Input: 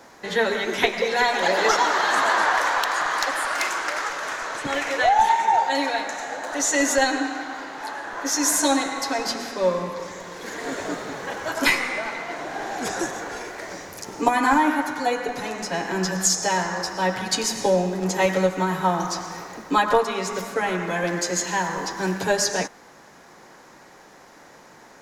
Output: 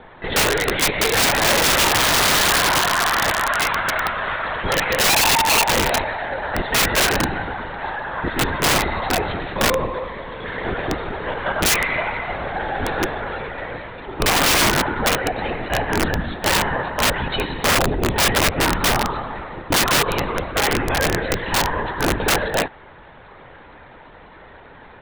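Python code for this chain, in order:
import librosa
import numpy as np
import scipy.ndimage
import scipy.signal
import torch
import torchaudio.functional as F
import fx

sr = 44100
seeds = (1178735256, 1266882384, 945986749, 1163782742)

y = fx.lpc_vocoder(x, sr, seeds[0], excitation='whisper', order=16)
y = (np.mod(10.0 ** (16.5 / 20.0) * y + 1.0, 2.0) - 1.0) / 10.0 ** (16.5 / 20.0)
y = y * librosa.db_to_amplitude(5.5)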